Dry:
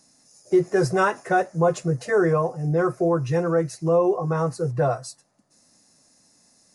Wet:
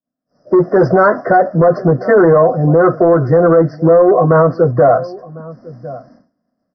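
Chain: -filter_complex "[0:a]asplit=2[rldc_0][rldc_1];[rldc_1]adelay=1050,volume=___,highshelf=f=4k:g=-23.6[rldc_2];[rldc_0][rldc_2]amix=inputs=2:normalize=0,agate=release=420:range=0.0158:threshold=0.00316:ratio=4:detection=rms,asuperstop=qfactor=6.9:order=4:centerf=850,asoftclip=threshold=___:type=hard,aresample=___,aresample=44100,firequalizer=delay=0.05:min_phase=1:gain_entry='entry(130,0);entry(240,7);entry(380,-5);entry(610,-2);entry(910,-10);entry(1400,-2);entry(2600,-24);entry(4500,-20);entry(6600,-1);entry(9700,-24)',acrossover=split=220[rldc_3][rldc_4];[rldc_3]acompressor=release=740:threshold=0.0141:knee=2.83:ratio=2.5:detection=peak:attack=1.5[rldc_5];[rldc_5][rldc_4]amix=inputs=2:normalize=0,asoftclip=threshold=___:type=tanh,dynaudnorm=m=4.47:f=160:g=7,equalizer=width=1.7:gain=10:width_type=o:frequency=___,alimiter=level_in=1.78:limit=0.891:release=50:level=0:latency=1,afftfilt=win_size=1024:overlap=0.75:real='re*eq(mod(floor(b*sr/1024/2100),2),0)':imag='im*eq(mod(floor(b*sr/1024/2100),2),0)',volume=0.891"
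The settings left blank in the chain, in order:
0.0501, 0.168, 11025, 0.133, 750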